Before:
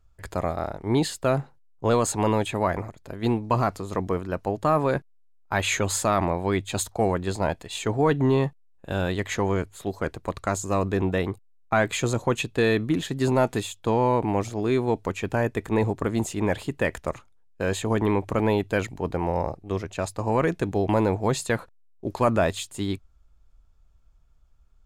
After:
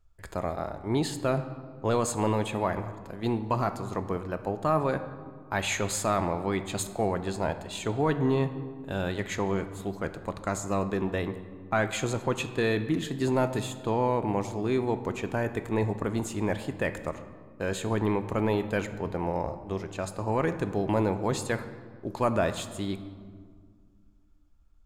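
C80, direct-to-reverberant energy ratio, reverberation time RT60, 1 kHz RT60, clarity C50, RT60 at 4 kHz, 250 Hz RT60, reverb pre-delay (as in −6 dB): 13.0 dB, 9.5 dB, 1.9 s, 1.9 s, 11.5 dB, 1.1 s, 2.7 s, 3 ms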